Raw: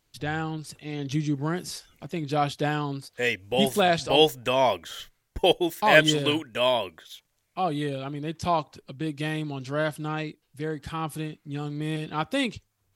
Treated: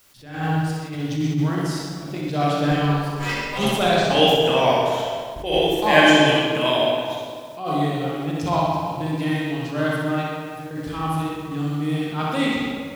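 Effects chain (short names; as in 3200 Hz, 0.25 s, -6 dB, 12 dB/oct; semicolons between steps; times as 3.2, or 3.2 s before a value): 2.71–3.65 minimum comb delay 5.1 ms; 10.23–10.71 compressor 4:1, threshold -45 dBFS, peak gain reduction 15 dB; added noise white -56 dBFS; flutter echo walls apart 10.7 m, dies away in 0.68 s; reverb RT60 1.9 s, pre-delay 21 ms, DRR -3.5 dB; attack slew limiter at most 100 dB/s; gain -1 dB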